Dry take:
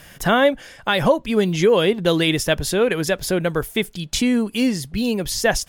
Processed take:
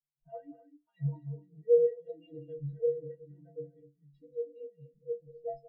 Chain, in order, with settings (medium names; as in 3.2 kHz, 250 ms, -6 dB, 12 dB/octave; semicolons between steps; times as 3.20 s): local Wiener filter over 15 samples; low-pass 3.8 kHz 24 dB/octave; hum notches 60/120/180 Hz; comb 6.2 ms, depth 72%; peak limiter -13 dBFS, peak gain reduction 9 dB; inharmonic resonator 140 Hz, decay 0.64 s, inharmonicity 0.03; loudspeakers at several distances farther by 64 m -7 dB, 86 m -6 dB; spectral contrast expander 2.5:1; trim +6 dB